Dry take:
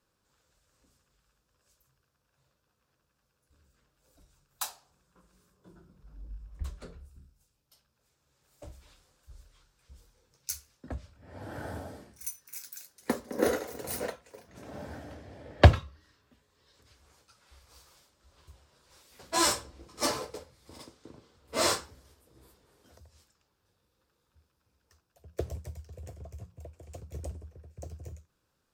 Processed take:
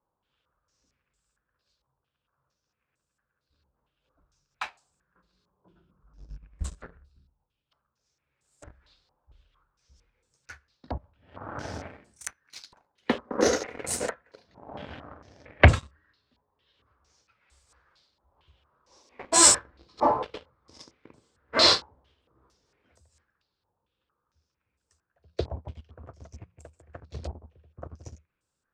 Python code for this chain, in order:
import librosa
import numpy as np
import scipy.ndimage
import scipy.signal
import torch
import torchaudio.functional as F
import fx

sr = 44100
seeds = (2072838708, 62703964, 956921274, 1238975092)

y = fx.spec_box(x, sr, start_s=18.87, length_s=0.47, low_hz=210.0, high_hz=1200.0, gain_db=11)
y = fx.leveller(y, sr, passes=2)
y = fx.filter_held_lowpass(y, sr, hz=4.4, low_hz=890.0, high_hz=8000.0)
y = F.gain(torch.from_numpy(y), -3.5).numpy()